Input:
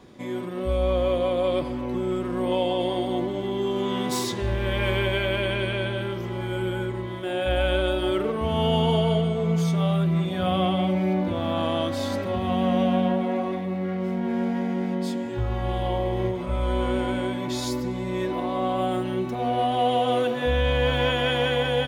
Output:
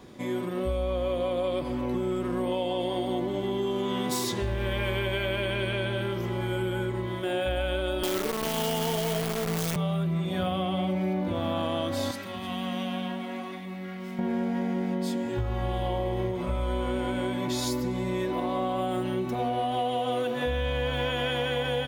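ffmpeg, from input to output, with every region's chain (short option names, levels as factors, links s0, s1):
-filter_complex "[0:a]asettb=1/sr,asplit=3[s0][s1][s2];[s0]atrim=end=8.034[s3];[s1]atrim=start=8.03:end=9.76,asetpts=PTS-STARTPTS,afade=t=in:d=0.004:c=qsin,afade=t=out:st=1.726:d=0.004:c=qsin,highpass=f=170:w=0.5412,highpass=f=170:w=1.3066,acrusher=bits=5:dc=4:mix=0:aa=0.000001[s4];[s2]atrim=start=9.756[s5];[s3][s4]acrossfade=d=0.004:c1=hsin:c2=qsin[s6];[s6][s5]acrossfade=d=0.004:c1=qsin:c2=hsin,asettb=1/sr,asplit=3[s7][s8][s9];[s7]atrim=end=12.114[s10];[s8]atrim=start=12.11:end=14.19,asetpts=PTS-STARTPTS,afade=t=in:d=0.004:c=qsin,afade=t=out:st=2.076:d=0.004:c=qsin,highpass=210,equalizer=f=490:w=0.59:g=-14.5,aecho=1:1:314:0.141,atrim=end_sample=91728[s11];[s9]atrim=start=14.186[s12];[s10][s11]acrossfade=d=0.004:c1=hsin:c2=qsin[s13];[s13][s12]acrossfade=d=0.004:c1=qsin:c2=hsin,highshelf=f=11000:g=8,acompressor=threshold=0.0501:ratio=6,volume=1.12"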